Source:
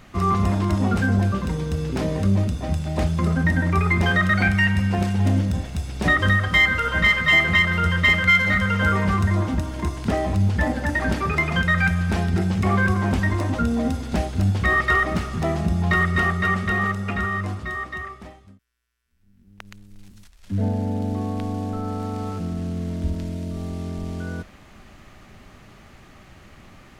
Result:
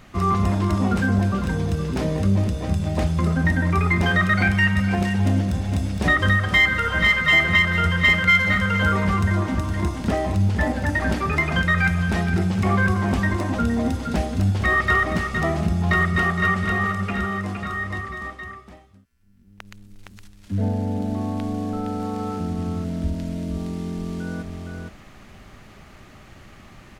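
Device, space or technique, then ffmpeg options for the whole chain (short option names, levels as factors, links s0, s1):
ducked delay: -filter_complex "[0:a]asplit=3[s0][s1][s2];[s1]adelay=464,volume=0.631[s3];[s2]apad=whole_len=1211129[s4];[s3][s4]sidechaincompress=threshold=0.0447:ratio=8:attack=48:release=275[s5];[s0][s5]amix=inputs=2:normalize=0"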